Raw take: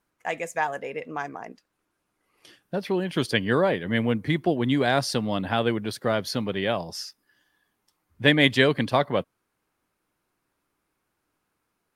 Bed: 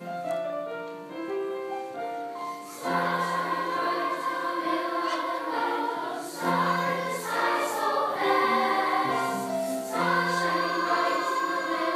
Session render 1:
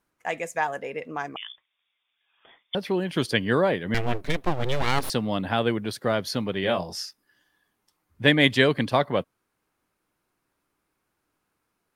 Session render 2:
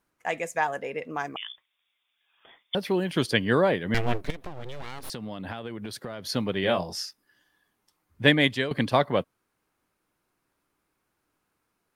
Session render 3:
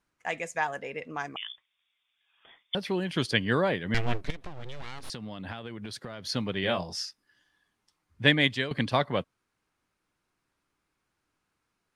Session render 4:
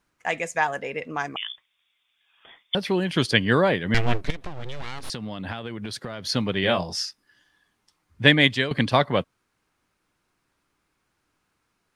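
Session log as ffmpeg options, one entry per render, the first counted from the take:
-filter_complex "[0:a]asettb=1/sr,asplit=3[s0][s1][s2];[s0]atrim=end=1.364[s3];[s1]atrim=start=1.36:end=2.75,asetpts=PTS-STARTPTS,afade=t=in:d=0.004:c=qsin,afade=t=out:st=1.386:d=0.004:c=qsin,lowpass=f=3100:t=q:w=0.5098,lowpass=f=3100:t=q:w=0.6013,lowpass=f=3100:t=q:w=0.9,lowpass=f=3100:t=q:w=2.563,afreqshift=-3700[s4];[s2]atrim=start=2.746[s5];[s3][s4]acrossfade=d=0.004:c1=hsin:c2=qsin[s6];[s6][s5]acrossfade=d=0.004:c1=qsin:c2=hsin,asettb=1/sr,asplit=3[s7][s8][s9];[s7]atrim=end=3.944[s10];[s8]atrim=start=3.94:end=5.1,asetpts=PTS-STARTPTS,afade=t=in:d=0.004:c=qsin,afade=t=out:st=1.156:d=0.004:c=qsin,aeval=exprs='abs(val(0))':c=same[s11];[s9]atrim=start=5.096[s12];[s10][s11]acrossfade=d=0.004:c1=hsin:c2=qsin[s13];[s13][s12]acrossfade=d=0.004:c1=qsin:c2=hsin,asettb=1/sr,asplit=3[s14][s15][s16];[s14]atrim=end=6.614[s17];[s15]atrim=start=6.61:end=7.06,asetpts=PTS-STARTPTS,afade=t=in:d=0.004:c=qsin,afade=t=out:st=0.446:d=0.004:c=qsin,asplit=2[s18][s19];[s19]adelay=22,volume=0.531[s20];[s18][s20]amix=inputs=2:normalize=0,atrim=end_sample=19845[s21];[s16]atrim=start=7.056[s22];[s17][s21]acrossfade=d=0.004:c1=hsin:c2=qsin[s23];[s23][s22]acrossfade=d=0.004:c1=qsin:c2=hsin"
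-filter_complex "[0:a]asettb=1/sr,asplit=3[s0][s1][s2];[s0]atrim=end=1.104[s3];[s1]atrim=start=1.1:end=3.13,asetpts=PTS-STARTPTS,afade=t=in:d=0.004:c=qsin,afade=t=out:st=2.026:d=0.004:c=qsin,highshelf=f=8400:g=7[s4];[s2]atrim=start=3.126[s5];[s3][s4]acrossfade=d=0.004:c1=hsin:c2=qsin[s6];[s6][s5]acrossfade=d=0.004:c1=qsin:c2=hsin,asettb=1/sr,asplit=3[s7][s8][s9];[s7]atrim=end=4.304[s10];[s8]atrim=start=4.3:end=6.29,asetpts=PTS-STARTPTS,afade=t=in:d=0.004:c=qsin,afade=t=out:st=1.986:d=0.004:c=qsin,acompressor=threshold=0.0282:ratio=16:attack=3.2:release=140:knee=1:detection=peak[s11];[s9]atrim=start=6.286[s12];[s10][s11]acrossfade=d=0.004:c1=hsin:c2=qsin[s13];[s13][s12]acrossfade=d=0.004:c1=qsin:c2=hsin,asplit=2[s14][s15];[s14]atrim=end=8.71,asetpts=PTS-STARTPTS,afade=t=out:st=8.27:d=0.44:silence=0.211349[s16];[s15]atrim=start=8.71,asetpts=PTS-STARTPTS,afade=t=in:d=0.004:c=hsin:silence=0.211349[s17];[s16][s17]concat=n=2:v=0:a=1"
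-af "lowpass=8100,equalizer=f=480:t=o:w=2.7:g=-5"
-af "volume=2,alimiter=limit=0.891:level=0:latency=1"

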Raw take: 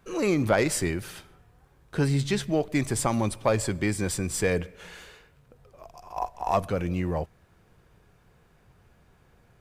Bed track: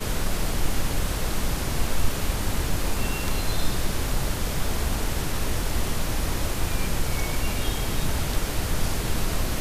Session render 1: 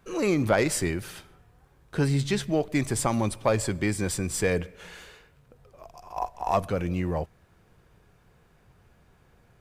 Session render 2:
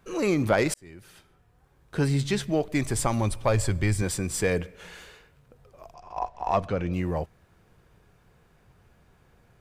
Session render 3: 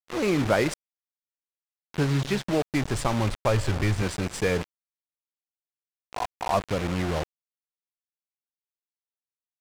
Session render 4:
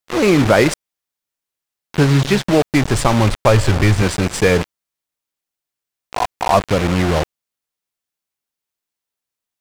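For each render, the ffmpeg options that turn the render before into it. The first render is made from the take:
-af anull
-filter_complex "[0:a]asettb=1/sr,asplit=3[s0][s1][s2];[s0]atrim=end=2.584[s3];[s1]atrim=start=2.58:end=4.02,asetpts=PTS-STARTPTS,afade=t=in:d=0.004:c=qsin,afade=t=out:st=1.436:d=0.004:c=qsin,asubboost=boost=11.5:cutoff=100[s4];[s2]atrim=start=4.016[s5];[s3][s4]acrossfade=d=0.004:c1=hsin:c2=qsin[s6];[s6][s5]acrossfade=d=0.004:c1=qsin:c2=hsin,asettb=1/sr,asplit=3[s7][s8][s9];[s7]atrim=end=5.944[s10];[s8]atrim=start=5.94:end=6.93,asetpts=PTS-STARTPTS,afade=t=in:d=0.004:c=qsin,afade=t=out:st=0.986:d=0.004:c=qsin,lowpass=4900[s11];[s9]atrim=start=6.926[s12];[s10][s11]acrossfade=d=0.004:c1=hsin:c2=qsin[s13];[s13][s12]acrossfade=d=0.004:c1=qsin:c2=hsin,asplit=2[s14][s15];[s14]atrim=end=0.74,asetpts=PTS-STARTPTS,afade=t=out:st=0.736:d=0.004:c=hsin[s16];[s15]atrim=start=0.74,asetpts=PTS-STARTPTS,afade=t=in:d=1.3[s17];[s16][s17]concat=n=2:v=0:a=1"
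-af "acrusher=bits=4:mix=0:aa=0.000001,adynamicsmooth=sensitivity=4.5:basefreq=2700"
-af "volume=3.55,alimiter=limit=0.891:level=0:latency=1"

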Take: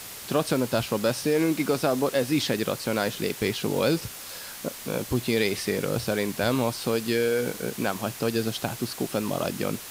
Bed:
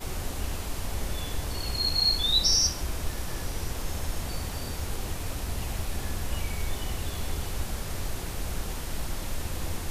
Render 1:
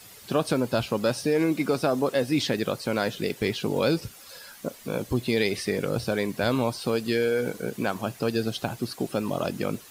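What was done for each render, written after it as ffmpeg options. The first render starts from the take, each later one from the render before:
-af "afftdn=nr=11:nf=-40"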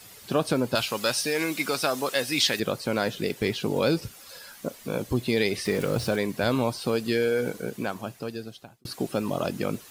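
-filter_complex "[0:a]asettb=1/sr,asplit=3[s0][s1][s2];[s0]atrim=end=0.754[s3];[s1]atrim=start=0.75:end=2.6,asetpts=PTS-STARTPTS,afade=t=in:d=0.004:c=qsin,afade=t=out:st=1.846:d=0.004:c=qsin,tiltshelf=f=880:g=-8.5[s4];[s2]atrim=start=2.596[s5];[s3][s4]acrossfade=d=0.004:c1=hsin:c2=qsin[s6];[s6][s5]acrossfade=d=0.004:c1=qsin:c2=hsin,asettb=1/sr,asplit=3[s7][s8][s9];[s7]atrim=end=5.654[s10];[s8]atrim=start=5.65:end=6.16,asetpts=PTS-STARTPTS,afade=t=in:d=0.004:c=qsin,afade=t=out:st=0.506:d=0.004:c=qsin,aeval=exprs='val(0)+0.5*0.0178*sgn(val(0))':c=same[s11];[s9]atrim=start=6.156[s12];[s10][s11]acrossfade=d=0.004:c1=hsin:c2=qsin[s13];[s13][s12]acrossfade=d=0.004:c1=qsin:c2=hsin,asplit=2[s14][s15];[s14]atrim=end=8.85,asetpts=PTS-STARTPTS,afade=t=out:st=7.45:d=1.4[s16];[s15]atrim=start=8.85,asetpts=PTS-STARTPTS,afade=t=in:d=0.004:c=hsin[s17];[s16][s17]concat=n=2:v=0:a=1"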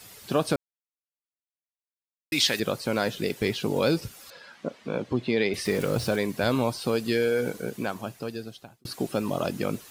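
-filter_complex "[0:a]asettb=1/sr,asplit=3[s0][s1][s2];[s0]atrim=end=4.304[s3];[s1]atrim=start=4.3:end=5.54,asetpts=PTS-STARTPTS,afade=t=in:d=0.004:c=qsin,afade=t=out:st=1.236:d=0.004:c=qsin,highpass=130,lowpass=3400[s4];[s2]atrim=start=5.536[s5];[s3][s4]acrossfade=d=0.004:c1=hsin:c2=qsin[s6];[s6][s5]acrossfade=d=0.004:c1=qsin:c2=hsin,asplit=3[s7][s8][s9];[s7]atrim=end=0.56,asetpts=PTS-STARTPTS,afade=t=out:st=0.556:d=0.004:c=hsin[s10];[s8]atrim=start=0.56:end=2.32,asetpts=PTS-STARTPTS,volume=0[s11];[s9]atrim=start=2.32,asetpts=PTS-STARTPTS,afade=t=in:d=0.004:c=hsin[s12];[s10][s11][s12]concat=n=3:v=0:a=1"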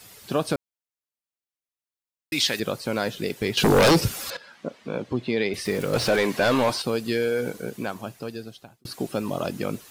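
-filter_complex "[0:a]asettb=1/sr,asplit=3[s0][s1][s2];[s0]atrim=end=3.574[s3];[s1]atrim=start=3.57:end=4.37,asetpts=PTS-STARTPTS,afade=t=in:d=0.004:c=qsin,afade=t=out:st=0.796:d=0.004:c=qsin,aeval=exprs='0.237*sin(PI/2*3.16*val(0)/0.237)':c=same[s4];[s2]atrim=start=4.366[s5];[s3][s4]acrossfade=d=0.004:c1=hsin:c2=qsin[s6];[s6][s5]acrossfade=d=0.004:c1=qsin:c2=hsin,asettb=1/sr,asplit=3[s7][s8][s9];[s7]atrim=end=5.934[s10];[s8]atrim=start=5.93:end=6.82,asetpts=PTS-STARTPTS,afade=t=in:d=0.004:c=qsin,afade=t=out:st=0.886:d=0.004:c=qsin,asplit=2[s11][s12];[s12]highpass=f=720:p=1,volume=10,asoftclip=type=tanh:threshold=0.282[s13];[s11][s13]amix=inputs=2:normalize=0,lowpass=f=3300:p=1,volume=0.501[s14];[s9]atrim=start=6.816[s15];[s10][s14]acrossfade=d=0.004:c1=hsin:c2=qsin[s16];[s16][s15]acrossfade=d=0.004:c1=qsin:c2=hsin"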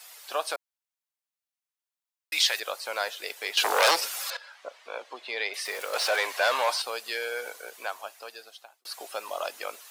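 -af "highpass=f=640:w=0.5412,highpass=f=640:w=1.3066"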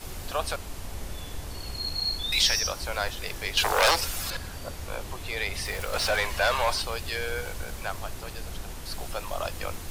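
-filter_complex "[1:a]volume=0.562[s0];[0:a][s0]amix=inputs=2:normalize=0"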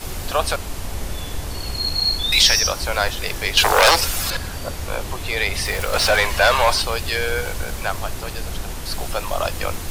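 -af "volume=2.82,alimiter=limit=0.891:level=0:latency=1"

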